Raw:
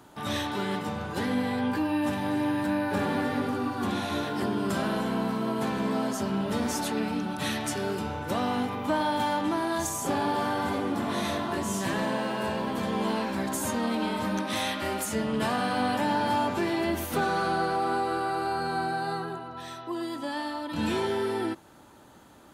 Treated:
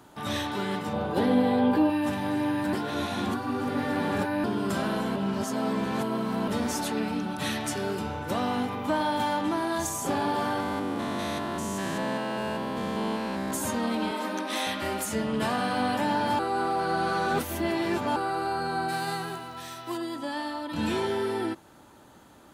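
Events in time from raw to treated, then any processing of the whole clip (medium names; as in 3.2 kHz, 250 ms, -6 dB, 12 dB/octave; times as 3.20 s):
0.93–1.90 s: FFT filter 120 Hz 0 dB, 180 Hz +4 dB, 660 Hz +9 dB, 970 Hz +3 dB, 2 kHz -3 dB, 3.6 kHz +2 dB, 6.7 kHz -9 dB, 10 kHz -2 dB
2.73–4.44 s: reverse
5.16–6.48 s: reverse
10.60–13.51 s: spectrogram pixelated in time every 200 ms
14.11–14.67 s: steep high-pass 230 Hz 48 dB/octave
16.39–18.16 s: reverse
18.88–19.96 s: formants flattened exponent 0.6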